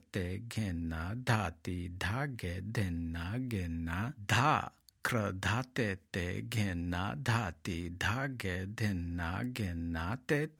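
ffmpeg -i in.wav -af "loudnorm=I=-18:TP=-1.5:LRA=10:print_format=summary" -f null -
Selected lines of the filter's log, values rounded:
Input Integrated:    -35.9 LUFS
Input True Peak:     -13.3 dBTP
Input LRA:             2.6 LU
Input Threshold:     -45.9 LUFS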